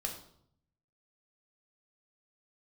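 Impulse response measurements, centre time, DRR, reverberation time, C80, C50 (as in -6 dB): 21 ms, 1.5 dB, 0.65 s, 11.0 dB, 7.5 dB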